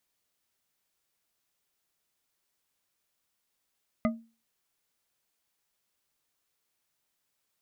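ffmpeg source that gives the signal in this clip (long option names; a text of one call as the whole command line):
ffmpeg -f lavfi -i "aevalsrc='0.0891*pow(10,-3*t/0.33)*sin(2*PI*228*t)+0.0596*pow(10,-3*t/0.162)*sin(2*PI*628.6*t)+0.0398*pow(10,-3*t/0.101)*sin(2*PI*1232.1*t)+0.0266*pow(10,-3*t/0.071)*sin(2*PI*2036.7*t)':duration=0.89:sample_rate=44100" out.wav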